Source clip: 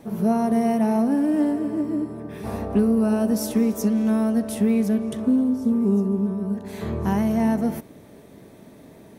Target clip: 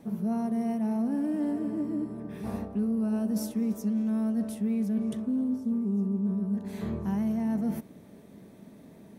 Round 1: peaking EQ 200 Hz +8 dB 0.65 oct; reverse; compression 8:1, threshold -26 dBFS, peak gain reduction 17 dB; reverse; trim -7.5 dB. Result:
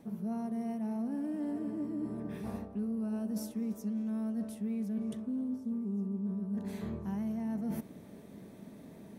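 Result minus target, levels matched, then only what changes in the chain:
compression: peak gain reduction +7 dB
change: compression 8:1, threshold -18 dBFS, peak gain reduction 10 dB

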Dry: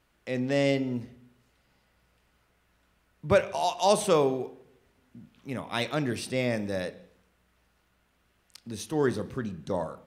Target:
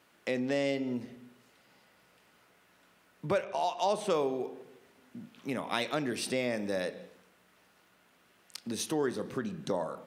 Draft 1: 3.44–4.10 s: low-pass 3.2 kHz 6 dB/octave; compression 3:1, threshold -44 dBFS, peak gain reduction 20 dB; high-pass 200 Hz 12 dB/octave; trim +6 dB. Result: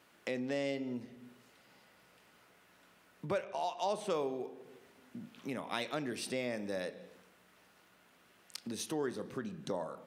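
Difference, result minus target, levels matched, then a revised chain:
compression: peak gain reduction +5.5 dB
3.44–4.10 s: low-pass 3.2 kHz 6 dB/octave; compression 3:1, threshold -36 dBFS, peak gain reduction 14.5 dB; high-pass 200 Hz 12 dB/octave; trim +6 dB

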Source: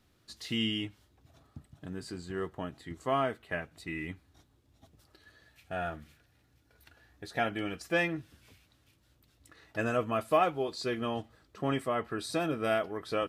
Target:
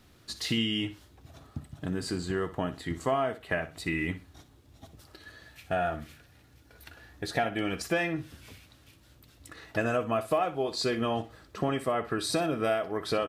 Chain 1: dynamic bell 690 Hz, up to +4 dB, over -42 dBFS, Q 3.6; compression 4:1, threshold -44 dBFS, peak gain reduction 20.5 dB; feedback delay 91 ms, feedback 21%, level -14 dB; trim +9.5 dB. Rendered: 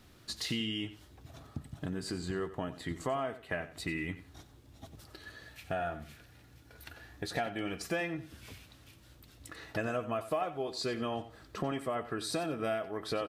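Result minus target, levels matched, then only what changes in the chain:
echo 30 ms late; compression: peak gain reduction +6 dB
change: compression 4:1, threshold -36 dBFS, peak gain reduction 14.5 dB; change: feedback delay 61 ms, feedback 21%, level -14 dB

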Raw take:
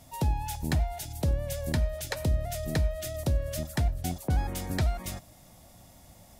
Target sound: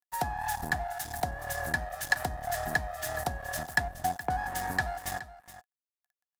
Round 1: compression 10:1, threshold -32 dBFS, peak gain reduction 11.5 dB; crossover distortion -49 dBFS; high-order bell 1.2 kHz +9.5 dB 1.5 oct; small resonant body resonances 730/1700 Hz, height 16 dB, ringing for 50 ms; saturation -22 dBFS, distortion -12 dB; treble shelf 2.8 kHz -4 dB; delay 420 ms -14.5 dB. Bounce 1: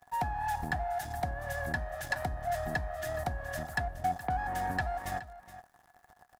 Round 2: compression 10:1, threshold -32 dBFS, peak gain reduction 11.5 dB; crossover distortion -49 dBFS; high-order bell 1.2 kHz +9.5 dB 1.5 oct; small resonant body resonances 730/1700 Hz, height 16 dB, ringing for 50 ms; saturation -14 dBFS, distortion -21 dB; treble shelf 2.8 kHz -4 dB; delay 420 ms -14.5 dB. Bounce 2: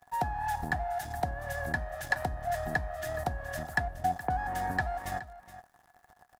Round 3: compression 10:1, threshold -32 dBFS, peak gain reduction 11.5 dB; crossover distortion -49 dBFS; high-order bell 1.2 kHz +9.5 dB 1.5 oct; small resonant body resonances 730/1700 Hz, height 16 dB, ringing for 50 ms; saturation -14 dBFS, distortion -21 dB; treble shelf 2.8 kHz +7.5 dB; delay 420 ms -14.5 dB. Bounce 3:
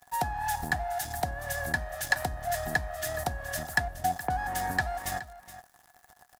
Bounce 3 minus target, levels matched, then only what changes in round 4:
crossover distortion: distortion -6 dB
change: crossover distortion -42.5 dBFS

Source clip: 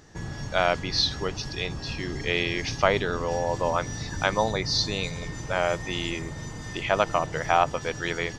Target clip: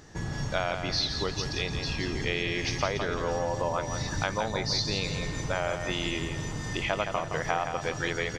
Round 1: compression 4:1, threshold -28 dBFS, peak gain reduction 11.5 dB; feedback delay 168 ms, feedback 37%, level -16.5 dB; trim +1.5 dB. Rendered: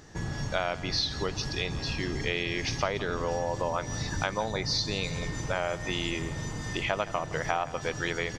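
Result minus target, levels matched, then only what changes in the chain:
echo-to-direct -9.5 dB
change: feedback delay 168 ms, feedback 37%, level -7 dB

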